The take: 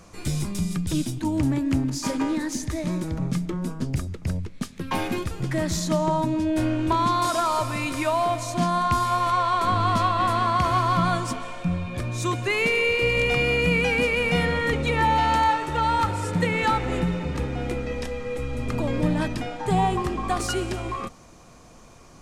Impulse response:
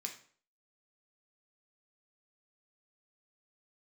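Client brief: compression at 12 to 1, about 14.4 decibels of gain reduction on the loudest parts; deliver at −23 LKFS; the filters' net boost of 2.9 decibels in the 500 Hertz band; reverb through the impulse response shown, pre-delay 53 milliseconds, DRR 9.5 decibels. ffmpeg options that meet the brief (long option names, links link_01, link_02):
-filter_complex "[0:a]equalizer=frequency=500:width_type=o:gain=3.5,acompressor=threshold=-31dB:ratio=12,asplit=2[link_01][link_02];[1:a]atrim=start_sample=2205,adelay=53[link_03];[link_02][link_03]afir=irnorm=-1:irlink=0,volume=-8dB[link_04];[link_01][link_04]amix=inputs=2:normalize=0,volume=11.5dB"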